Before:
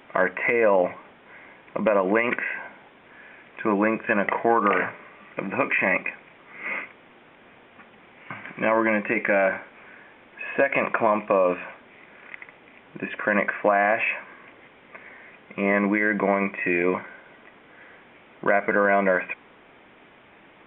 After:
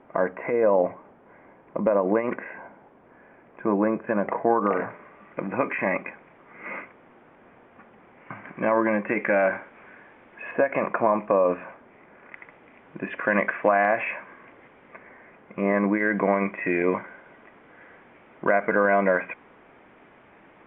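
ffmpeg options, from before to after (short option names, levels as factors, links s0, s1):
-af "asetnsamples=n=441:p=0,asendcmd='4.9 lowpass f 1500;9.09 lowpass f 2000;10.51 lowpass f 1400;12.34 lowpass f 1900;13.08 lowpass f 2600;13.85 lowpass f 1900;14.98 lowpass f 1500;16 lowpass f 2000',lowpass=1000"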